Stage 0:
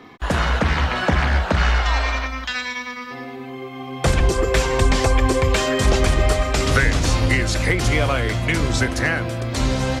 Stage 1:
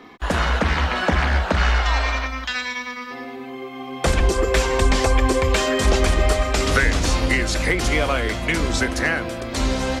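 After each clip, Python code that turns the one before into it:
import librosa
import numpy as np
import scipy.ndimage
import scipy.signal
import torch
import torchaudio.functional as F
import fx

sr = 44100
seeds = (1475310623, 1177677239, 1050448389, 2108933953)

y = fx.peak_eq(x, sr, hz=120.0, db=-13.5, octaves=0.43)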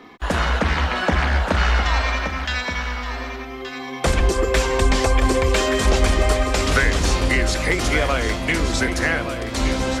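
y = x + 10.0 ** (-9.5 / 20.0) * np.pad(x, (int(1174 * sr / 1000.0), 0))[:len(x)]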